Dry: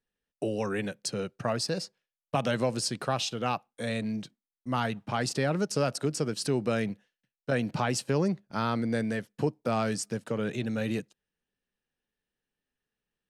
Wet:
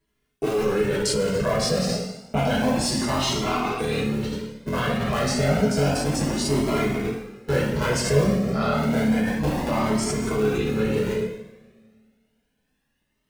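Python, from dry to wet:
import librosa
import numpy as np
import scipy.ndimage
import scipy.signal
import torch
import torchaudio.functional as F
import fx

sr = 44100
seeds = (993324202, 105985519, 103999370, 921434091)

p1 = fx.cycle_switch(x, sr, every=3, mode='muted')
p2 = fx.small_body(p1, sr, hz=(220.0, 410.0, 2100.0), ring_ms=40, db=9)
p3 = p2 + fx.echo_single(p2, sr, ms=226, db=-22.5, dry=0)
p4 = fx.rev_double_slope(p3, sr, seeds[0], early_s=0.82, late_s=2.1, knee_db=-24, drr_db=-7.5)
p5 = fx.over_compress(p4, sr, threshold_db=-29.0, ratio=-1.0)
p6 = p4 + F.gain(torch.from_numpy(p5), -0.5).numpy()
y = fx.comb_cascade(p6, sr, direction='rising', hz=0.3)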